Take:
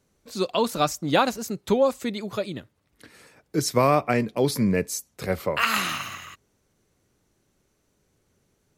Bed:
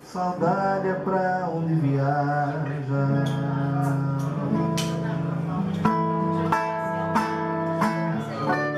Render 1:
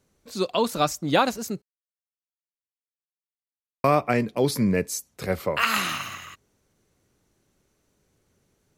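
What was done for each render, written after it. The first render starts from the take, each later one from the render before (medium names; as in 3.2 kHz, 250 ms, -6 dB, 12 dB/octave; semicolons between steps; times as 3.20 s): 1.62–3.84 s: mute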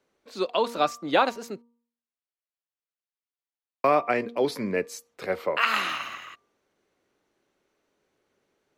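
three-band isolator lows -18 dB, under 270 Hz, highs -13 dB, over 4.2 kHz; de-hum 235.7 Hz, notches 5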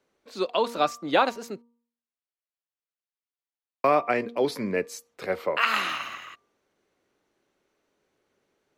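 no audible change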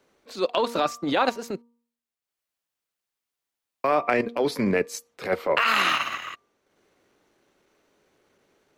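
transient shaper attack -11 dB, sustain -7 dB; in parallel at +2.5 dB: compressor with a negative ratio -29 dBFS, ratio -0.5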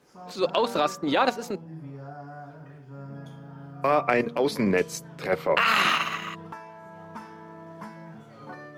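add bed -18 dB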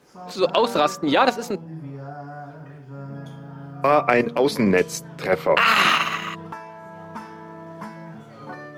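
trim +5 dB; peak limiter -3 dBFS, peak gain reduction 2.5 dB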